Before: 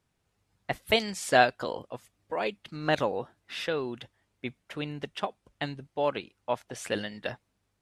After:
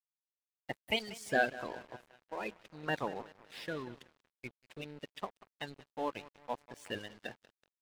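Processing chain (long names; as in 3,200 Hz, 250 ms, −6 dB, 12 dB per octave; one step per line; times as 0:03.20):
spectral magnitudes quantised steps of 30 dB
feedback echo with a low-pass in the loop 187 ms, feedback 65%, low-pass 4,800 Hz, level −15 dB
dead-zone distortion −43.5 dBFS
level −7.5 dB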